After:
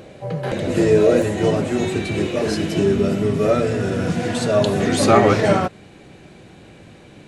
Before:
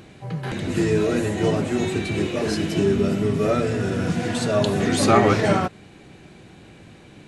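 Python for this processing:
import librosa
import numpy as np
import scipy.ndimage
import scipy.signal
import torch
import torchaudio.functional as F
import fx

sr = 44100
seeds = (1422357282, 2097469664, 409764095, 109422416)

y = fx.peak_eq(x, sr, hz=550.0, db=fx.steps((0.0, 14.0), (1.22, 4.0)), octaves=0.6)
y = y * librosa.db_to_amplitude(1.5)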